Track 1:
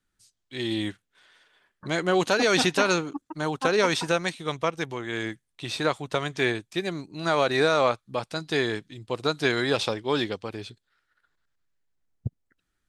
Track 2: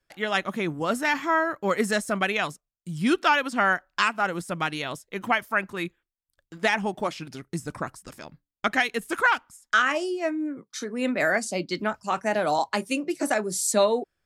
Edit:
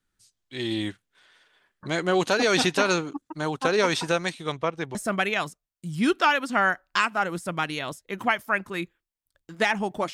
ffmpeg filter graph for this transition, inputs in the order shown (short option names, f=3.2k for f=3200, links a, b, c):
-filter_complex "[0:a]asettb=1/sr,asplit=3[a][b][c];[a]atrim=end=4.524[d];[b]atrim=start=4.52:end=4.95,asetpts=PTS-STARTPTS,afade=t=in:d=0.004:c=qsin,afade=t=out:st=0.426:d=0.004:c=qsin,lowpass=f=2.5k:p=1[e];[c]atrim=start=4.946[f];[d][e]acrossfade=d=0.004:c1=hsin:c2=qsin[g];[g][f]acrossfade=d=0.004:c1=qsin:c2=hsin,apad=whole_dur=10.13,atrim=end=10.13,atrim=end=4.952[h];[1:a]atrim=start=1.978:end=7.16[i];[h][i]acrossfade=d=0.004:c1=hsin:c2=hsin"